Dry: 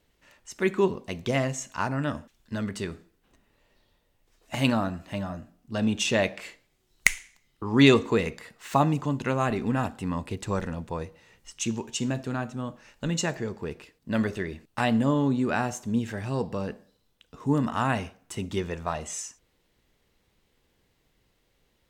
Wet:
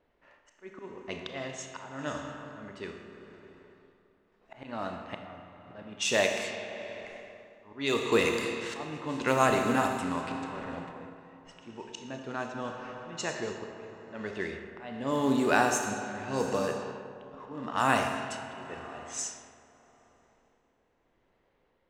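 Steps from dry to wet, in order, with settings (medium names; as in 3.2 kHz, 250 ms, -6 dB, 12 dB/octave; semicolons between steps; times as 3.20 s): slow attack 520 ms; tone controls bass -11 dB, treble +5 dB; Schroeder reverb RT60 3.4 s, combs from 26 ms, DRR 2.5 dB; tremolo 0.84 Hz, depth 35%; in parallel at -7.5 dB: short-mantissa float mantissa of 2-bit; on the sum: level-controlled noise filter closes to 1.4 kHz, open at -25 dBFS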